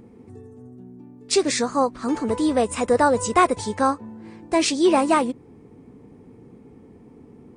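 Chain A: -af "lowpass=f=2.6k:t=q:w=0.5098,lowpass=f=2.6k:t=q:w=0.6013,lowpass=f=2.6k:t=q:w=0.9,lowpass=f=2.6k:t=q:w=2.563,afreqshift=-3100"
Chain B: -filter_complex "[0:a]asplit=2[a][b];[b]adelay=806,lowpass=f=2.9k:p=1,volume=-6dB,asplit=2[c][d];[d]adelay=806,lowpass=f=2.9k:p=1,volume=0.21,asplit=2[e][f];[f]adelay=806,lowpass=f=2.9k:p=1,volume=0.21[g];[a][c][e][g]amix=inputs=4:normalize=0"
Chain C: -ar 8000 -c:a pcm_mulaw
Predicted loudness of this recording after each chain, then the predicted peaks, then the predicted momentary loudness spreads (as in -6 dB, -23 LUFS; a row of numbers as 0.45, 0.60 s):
-18.5, -21.0, -21.5 LUFS; -3.5, -4.5, -5.5 dBFS; 9, 19, 9 LU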